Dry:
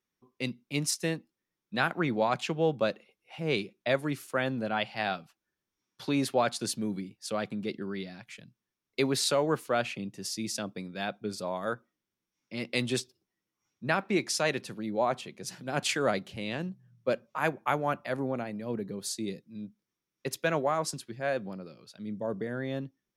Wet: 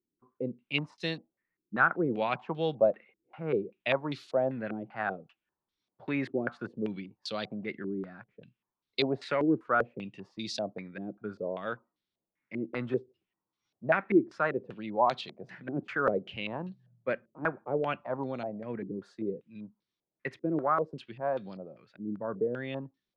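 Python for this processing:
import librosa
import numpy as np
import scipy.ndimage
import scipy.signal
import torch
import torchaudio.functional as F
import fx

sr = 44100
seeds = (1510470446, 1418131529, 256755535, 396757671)

y = fx.filter_held_lowpass(x, sr, hz=5.1, low_hz=330.0, high_hz=4000.0)
y = F.gain(torch.from_numpy(y), -4.0).numpy()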